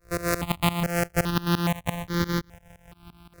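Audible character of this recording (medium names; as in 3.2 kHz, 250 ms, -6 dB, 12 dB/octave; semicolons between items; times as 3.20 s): a buzz of ramps at a fixed pitch in blocks of 256 samples; tremolo saw up 5.8 Hz, depth 95%; notches that jump at a steady rate 2.4 Hz 860–2600 Hz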